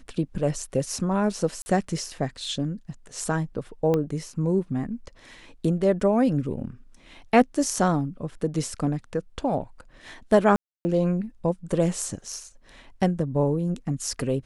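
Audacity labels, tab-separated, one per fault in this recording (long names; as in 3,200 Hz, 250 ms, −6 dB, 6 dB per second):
1.620000	1.660000	drop-out 40 ms
3.940000	3.940000	click −13 dBFS
10.560000	10.850000	drop-out 290 ms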